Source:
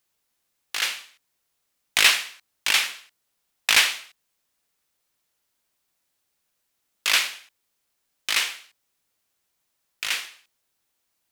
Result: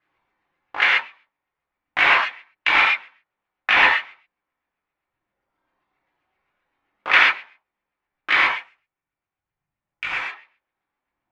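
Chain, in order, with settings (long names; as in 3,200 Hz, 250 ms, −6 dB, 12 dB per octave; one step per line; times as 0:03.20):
0:08.54–0:10.19: octave-band graphic EQ 125/250/500/1,000/2,000/4,000/8,000 Hz +3/−5/−5/−5/−5/−6/+4 dB
reverb reduction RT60 1.6 s
high-shelf EQ 5,100 Hz −9.5 dB
brickwall limiter −11 dBFS, peak gain reduction 5.5 dB
auto-filter low-pass sine 7.6 Hz 860–2,300 Hz
reverb whose tail is shaped and stops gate 160 ms flat, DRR −6.5 dB
level +3.5 dB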